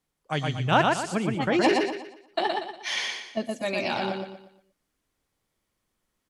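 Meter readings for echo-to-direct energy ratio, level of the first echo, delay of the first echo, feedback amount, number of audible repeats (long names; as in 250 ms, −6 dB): −2.5 dB, −3.0 dB, 119 ms, 37%, 4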